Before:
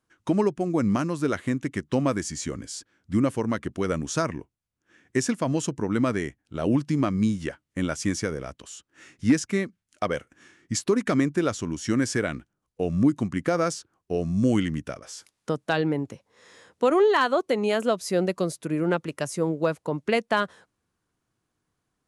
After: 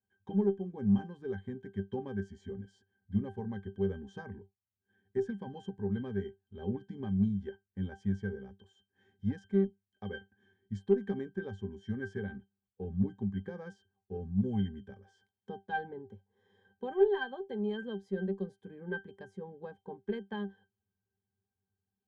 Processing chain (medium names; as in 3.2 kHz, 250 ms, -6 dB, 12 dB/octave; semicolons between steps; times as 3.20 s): pitch-class resonator G, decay 0.16 s; Chebyshev shaper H 4 -30 dB, 6 -38 dB, 8 -40 dB, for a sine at -15 dBFS